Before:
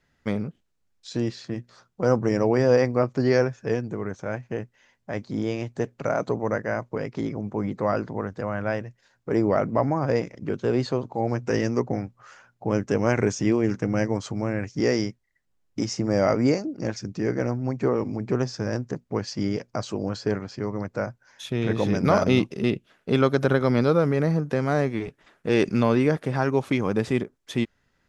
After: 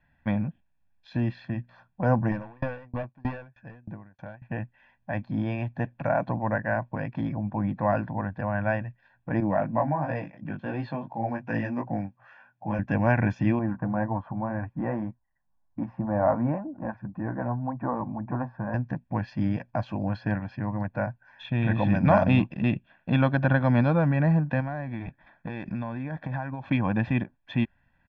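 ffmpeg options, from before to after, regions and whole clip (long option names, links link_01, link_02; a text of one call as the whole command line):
ffmpeg -i in.wav -filter_complex "[0:a]asettb=1/sr,asplit=3[link_01][link_02][link_03];[link_01]atrim=end=2.314[link_04];[link_02]atrim=start=2.31:end=4.42,asetpts=PTS-STARTPTS,afade=type=in:duration=0.004:curve=qsin,afade=type=out:start_time=2.106:duration=0.004:curve=qsin,volume=18.5dB,asoftclip=hard,volume=-18.5dB,aeval=exprs='val(0)*pow(10,-33*if(lt(mod(3.2*n/s,1),2*abs(3.2)/1000),1-mod(3.2*n/s,1)/(2*abs(3.2)/1000),(mod(3.2*n/s,1)-2*abs(3.2)/1000)/(1-2*abs(3.2)/1000))/20)':channel_layout=same[link_05];[link_03]atrim=start=4.416[link_06];[link_04][link_05]acrossfade=duration=0.004:curve1=hsin:curve2=qsin[link_07];[link_07][link_06]acrossfade=duration=0.004:curve1=qsin:curve2=hsin,asettb=1/sr,asplit=3[link_08][link_09][link_10];[link_08]atrim=end=9.404[link_11];[link_09]atrim=start=9.4:end=12.79,asetpts=PTS-STARTPTS,afade=type=in:duration=0.004:curve=qsin,afade=type=out:start_time=3.386:duration=0.004:curve=qsin,highpass=130,flanger=delay=18:depth=2.7:speed=2.8[link_12];[link_10]atrim=start=12.786[link_13];[link_11][link_12]acrossfade=duration=0.004:curve1=hsin:curve2=qsin[link_14];[link_14][link_13]acrossfade=duration=0.004:curve1=qsin:curve2=hsin,asettb=1/sr,asplit=3[link_15][link_16][link_17];[link_15]atrim=end=13.594[link_18];[link_16]atrim=start=13.59:end=18.74,asetpts=PTS-STARTPTS,afade=type=in:duration=0.004:curve=qsin,afade=type=out:start_time=5.146:duration=0.004:curve=qsin,flanger=delay=2.6:depth=3.2:regen=-50:speed=1.9:shape=triangular,lowpass=frequency=1100:width_type=q:width=2.4[link_19];[link_17]atrim=start=18.736[link_20];[link_18][link_19]acrossfade=duration=0.004:curve1=hsin:curve2=qsin[link_21];[link_21][link_20]acrossfade=duration=0.004:curve1=qsin:curve2=hsin,asettb=1/sr,asplit=3[link_22][link_23][link_24];[link_22]atrim=end=24.604[link_25];[link_23]atrim=start=24.6:end=26.66,asetpts=PTS-STARTPTS,afade=type=in:duration=0.004:curve=qsin,afade=type=out:start_time=2.056:duration=0.004:curve=qsin,bandreject=frequency=2800:width=5.3,acompressor=threshold=-27dB:ratio=10:attack=3.2:release=140:knee=1:detection=peak[link_26];[link_24]atrim=start=26.656[link_27];[link_25][link_26]acrossfade=duration=0.004:curve1=hsin:curve2=qsin[link_28];[link_28][link_27]acrossfade=duration=0.004:curve1=qsin:curve2=hsin,lowpass=frequency=2800:width=0.5412,lowpass=frequency=2800:width=1.3066,bandreject=frequency=390:width=12,aecho=1:1:1.2:0.87,volume=-1.5dB" out.wav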